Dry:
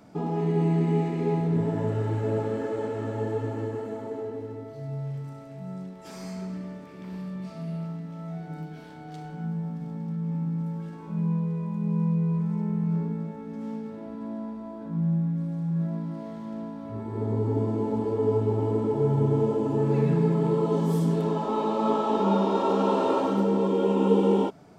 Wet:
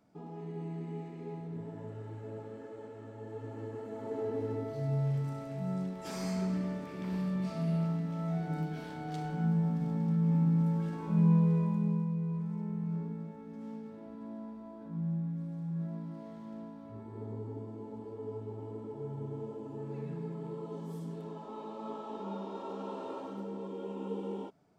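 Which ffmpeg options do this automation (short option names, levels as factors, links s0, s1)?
-af "volume=1.26,afade=t=in:st=3.21:d=0.71:silence=0.375837,afade=t=in:st=3.92:d=0.61:silence=0.316228,afade=t=out:st=11.57:d=0.48:silence=0.281838,afade=t=out:st=16.54:d=1.1:silence=0.398107"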